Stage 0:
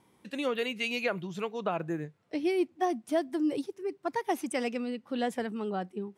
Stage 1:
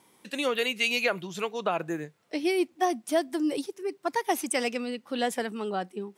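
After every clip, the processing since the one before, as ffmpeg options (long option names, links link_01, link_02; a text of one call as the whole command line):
ffmpeg -i in.wav -af "highpass=frequency=300:poles=1,highshelf=frequency=3800:gain=8,volume=4dB" out.wav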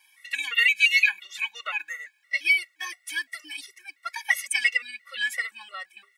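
ffmpeg -i in.wav -af "highpass=frequency=2000:width_type=q:width=6.4,aecho=1:1:3.6:0.65,afftfilt=real='re*gt(sin(2*PI*2.9*pts/sr)*(1-2*mod(floor(b*sr/1024/370),2)),0)':imag='im*gt(sin(2*PI*2.9*pts/sr)*(1-2*mod(floor(b*sr/1024/370),2)),0)':win_size=1024:overlap=0.75,volume=2.5dB" out.wav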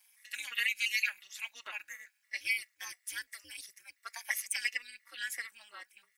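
ffmpeg -i in.wav -af "tremolo=f=220:d=0.974,aexciter=amount=1.3:drive=9.7:freq=4700,volume=-7.5dB" out.wav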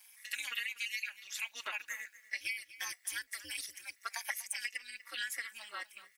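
ffmpeg -i in.wav -af "acompressor=threshold=-41dB:ratio=12,aecho=1:1:243:0.141,volume=6.5dB" out.wav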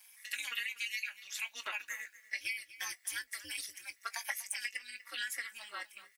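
ffmpeg -i in.wav -filter_complex "[0:a]asplit=2[link_01][link_02];[link_02]adelay=20,volume=-12.5dB[link_03];[link_01][link_03]amix=inputs=2:normalize=0" out.wav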